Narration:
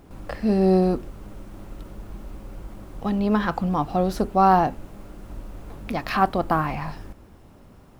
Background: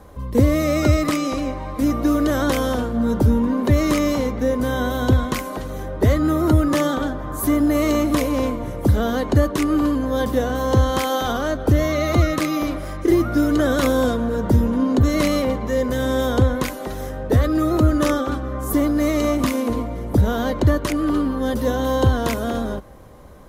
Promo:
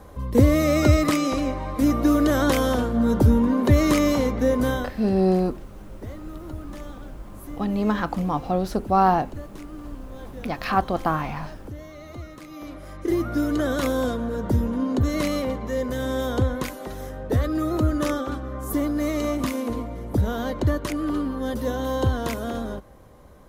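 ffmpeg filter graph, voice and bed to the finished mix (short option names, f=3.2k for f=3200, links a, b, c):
-filter_complex "[0:a]adelay=4550,volume=-1.5dB[a];[1:a]volume=15dB,afade=t=out:st=4.69:d=0.22:silence=0.0944061,afade=t=in:st=12.47:d=0.8:silence=0.16788[b];[a][b]amix=inputs=2:normalize=0"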